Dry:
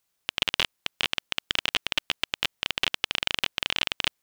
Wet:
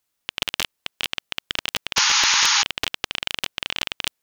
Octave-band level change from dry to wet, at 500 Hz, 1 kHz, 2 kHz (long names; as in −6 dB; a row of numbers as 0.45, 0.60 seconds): +1.0, +8.5, +4.5 decibels